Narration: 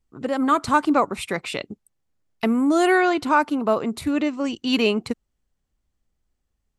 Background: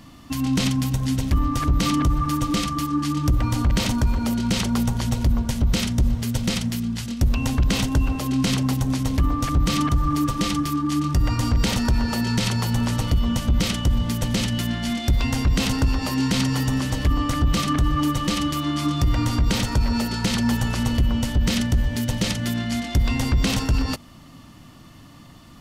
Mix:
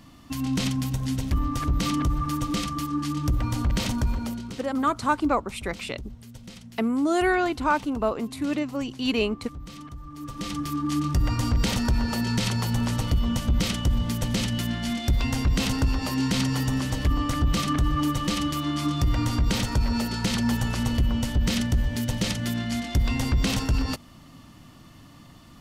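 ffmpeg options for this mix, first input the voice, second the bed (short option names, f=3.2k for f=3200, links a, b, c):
-filter_complex "[0:a]adelay=4350,volume=-4.5dB[a];[1:a]volume=12.5dB,afade=t=out:st=4.11:d=0.46:silence=0.16788,afade=t=in:st=10.14:d=0.78:silence=0.141254[b];[a][b]amix=inputs=2:normalize=0"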